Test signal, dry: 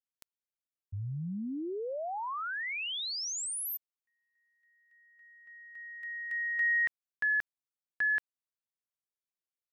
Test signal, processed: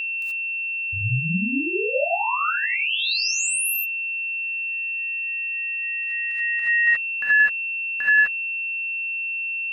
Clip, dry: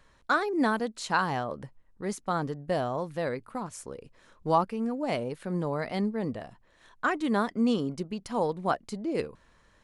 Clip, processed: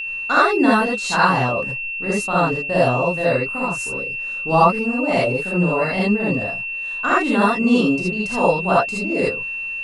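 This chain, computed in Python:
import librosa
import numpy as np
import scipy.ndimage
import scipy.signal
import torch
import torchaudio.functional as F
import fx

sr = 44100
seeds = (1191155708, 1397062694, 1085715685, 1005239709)

y = fx.rev_gated(x, sr, seeds[0], gate_ms=100, shape='rising', drr_db=-7.5)
y = y + 10.0 ** (-27.0 / 20.0) * np.sin(2.0 * np.pi * 2700.0 * np.arange(len(y)) / sr)
y = y * librosa.db_to_amplitude(2.5)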